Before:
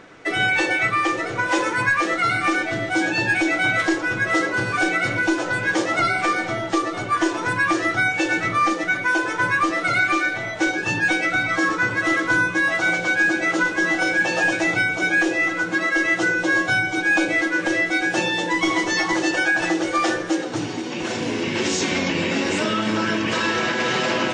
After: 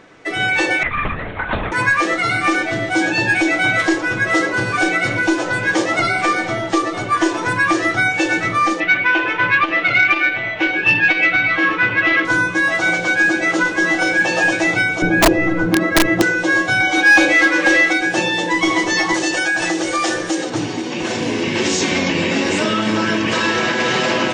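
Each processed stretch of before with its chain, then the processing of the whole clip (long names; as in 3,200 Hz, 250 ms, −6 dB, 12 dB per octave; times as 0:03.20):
0:00.83–0:01.72: amplitude modulation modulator 42 Hz, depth 100% + linear-prediction vocoder at 8 kHz whisper
0:08.80–0:12.25: low-pass with resonance 2,700 Hz, resonance Q 3.6 + saturating transformer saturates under 820 Hz
0:15.02–0:16.22: spectral tilt −4.5 dB per octave + wrap-around overflow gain 8 dB
0:16.80–0:17.93: comb filter 3.7 ms, depth 48% + mid-hump overdrive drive 13 dB, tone 4,900 Hz, clips at −6.5 dBFS
0:19.14–0:20.50: downward compressor 2 to 1, threshold −22 dBFS + high-shelf EQ 4,800 Hz +10 dB
whole clip: automatic gain control gain up to 4.5 dB; notch filter 1,400 Hz, Q 14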